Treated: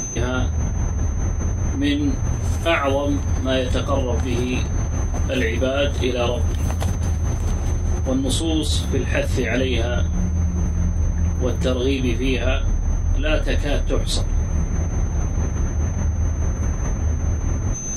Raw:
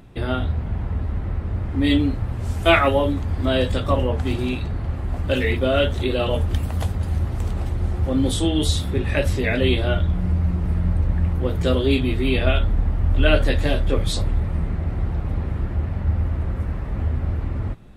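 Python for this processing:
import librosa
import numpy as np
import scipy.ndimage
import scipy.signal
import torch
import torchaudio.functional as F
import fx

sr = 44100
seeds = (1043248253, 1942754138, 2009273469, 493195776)

y = x + 10.0 ** (-42.0 / 20.0) * np.sin(2.0 * np.pi * 6200.0 * np.arange(len(x)) / sr)
y = y * (1.0 - 0.78 / 2.0 + 0.78 / 2.0 * np.cos(2.0 * np.pi * 4.8 * (np.arange(len(y)) / sr)))
y = fx.env_flatten(y, sr, amount_pct=70)
y = y * 10.0 ** (-4.0 / 20.0)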